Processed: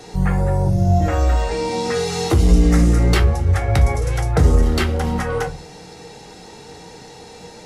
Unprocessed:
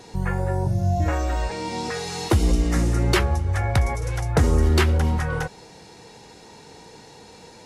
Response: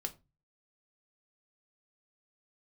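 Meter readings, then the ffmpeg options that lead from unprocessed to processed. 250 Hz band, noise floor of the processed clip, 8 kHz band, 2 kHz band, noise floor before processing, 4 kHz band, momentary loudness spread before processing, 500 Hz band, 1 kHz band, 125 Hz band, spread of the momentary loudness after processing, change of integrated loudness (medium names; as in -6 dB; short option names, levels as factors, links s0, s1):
+5.5 dB, -40 dBFS, +3.0 dB, +1.5 dB, -46 dBFS, +2.5 dB, 9 LU, +5.5 dB, +3.5 dB, +4.5 dB, 7 LU, +5.0 dB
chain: -filter_complex "[0:a]acrossover=split=260[s0][s1];[s1]acompressor=threshold=0.0562:ratio=2[s2];[s0][s2]amix=inputs=2:normalize=0,asoftclip=type=tanh:threshold=0.251[s3];[1:a]atrim=start_sample=2205[s4];[s3][s4]afir=irnorm=-1:irlink=0,volume=2.11"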